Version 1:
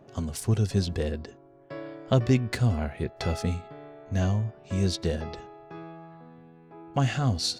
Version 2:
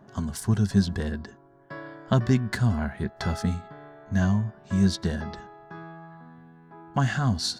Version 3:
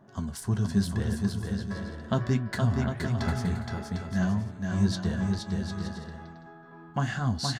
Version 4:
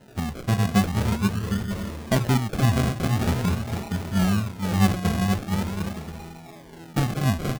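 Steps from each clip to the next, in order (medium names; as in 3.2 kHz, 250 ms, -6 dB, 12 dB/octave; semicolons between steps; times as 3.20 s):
graphic EQ with 31 bands 200 Hz +9 dB, 315 Hz -3 dB, 500 Hz -9 dB, 1 kHz +6 dB, 1.6 kHz +9 dB, 2.5 kHz -8 dB
flange 0.82 Hz, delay 8.1 ms, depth 8.6 ms, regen -58%; bouncing-ball echo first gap 470 ms, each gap 0.6×, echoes 5
decimation with a swept rate 38×, swing 60% 0.44 Hz; trim +5 dB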